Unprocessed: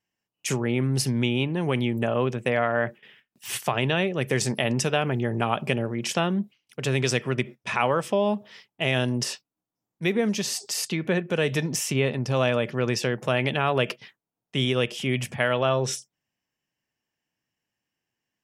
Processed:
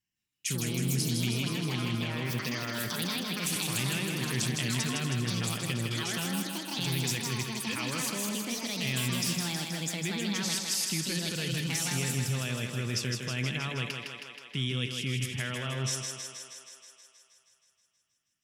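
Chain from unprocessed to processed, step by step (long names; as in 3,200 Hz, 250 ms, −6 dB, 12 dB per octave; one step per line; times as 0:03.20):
delay with pitch and tempo change per echo 164 ms, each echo +5 semitones, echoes 2
in parallel at −2 dB: compressor whose output falls as the input rises −27 dBFS, ratio −1
on the sum: guitar amp tone stack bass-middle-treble 6-0-2
feedback echo with a high-pass in the loop 159 ms, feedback 70%, high-pass 220 Hz, level −4.5 dB
level +6 dB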